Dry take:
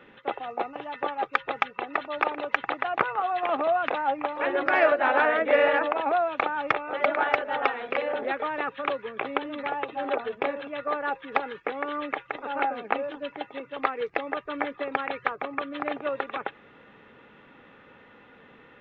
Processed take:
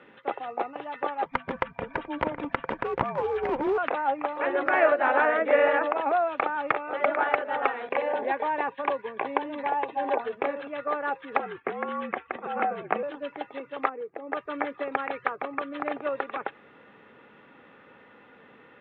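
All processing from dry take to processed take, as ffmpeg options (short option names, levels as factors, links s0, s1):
-filter_complex "[0:a]asettb=1/sr,asplit=3[s0][s1][s2];[s0]atrim=end=1.254[s3];[s1]atrim=start=1.25:end=3.78,asetpts=PTS-STARTPTS,afade=t=in:d=0.004:c=qsin,afade=t=out:st=2.526:d=0.004:c=qsin,bass=f=250:g=4,treble=f=4000:g=-3,afreqshift=-290,aeval=exprs='clip(val(0),-1,0.0596)':c=same[s4];[s2]atrim=start=3.776[s5];[s3][s4]acrossfade=d=0.004:c1=hsin:c2=qsin[s6];[s6][s5]acrossfade=d=0.004:c1=qsin:c2=hsin,asettb=1/sr,asplit=3[s7][s8][s9];[s7]atrim=end=7.894[s10];[s8]atrim=start=7.89:end=10.22,asetpts=PTS-STARTPTS,afade=t=in:d=0.004:c=qsin,afade=t=out:st=2.326:d=0.004:c=qsin,agate=range=0.0224:threshold=0.00891:ratio=3:release=100:detection=peak,asuperstop=centerf=1300:order=4:qfactor=4.7,equalizer=f=950:t=o:w=0.56:g=6.5[s11];[s9]atrim=start=10.216[s12];[s10][s11]acrossfade=d=0.004:c1=hsin:c2=qsin[s13];[s13][s12]acrossfade=d=0.004:c1=qsin:c2=hsin,asettb=1/sr,asplit=3[s14][s15][s16];[s14]atrim=end=11.394[s17];[s15]atrim=start=11.39:end=13.03,asetpts=PTS-STARTPTS,afade=t=in:d=0.004:c=qsin,afade=t=out:st=1.636:d=0.004:c=qsin,lowpass=f=3500:w=0.5412,lowpass=f=3500:w=1.3066,afreqshift=-57[s18];[s16]atrim=start=13.026[s19];[s17][s18]acrossfade=d=0.004:c1=hsin:c2=qsin[s20];[s20][s19]acrossfade=d=0.004:c1=qsin:c2=hsin,asettb=1/sr,asplit=3[s21][s22][s23];[s21]atrim=end=13.894[s24];[s22]atrim=start=13.89:end=14.32,asetpts=PTS-STARTPTS,afade=t=in:d=0.004:c=qsin,afade=t=out:st=0.426:d=0.004:c=qsin,bandpass=f=350:t=q:w=0.79,acompressor=threshold=0.0178:ratio=2:attack=3.2:release=140:knee=1:detection=peak[s25];[s23]atrim=start=14.316[s26];[s24][s25]acrossfade=d=0.004:c1=hsin:c2=qsin[s27];[s27][s26]acrossfade=d=0.004:c1=qsin:c2=hsin,highpass=f=150:p=1,aemphasis=mode=reproduction:type=50fm,acrossover=split=3100[s28][s29];[s29]acompressor=threshold=0.00224:ratio=4:attack=1:release=60[s30];[s28][s30]amix=inputs=2:normalize=0"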